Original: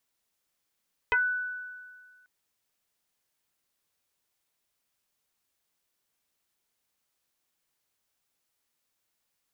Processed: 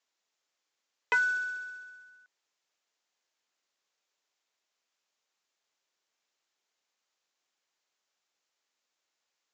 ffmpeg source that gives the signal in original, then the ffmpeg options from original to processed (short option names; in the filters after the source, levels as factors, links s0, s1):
-f lavfi -i "aevalsrc='0.1*pow(10,-3*t/1.77)*sin(2*PI*1490*t+2.5*pow(10,-3*t/0.14)*sin(2*PI*0.35*1490*t))':d=1.14:s=44100"
-af "highpass=370,aresample=16000,acrusher=bits=5:mode=log:mix=0:aa=0.000001,aresample=44100"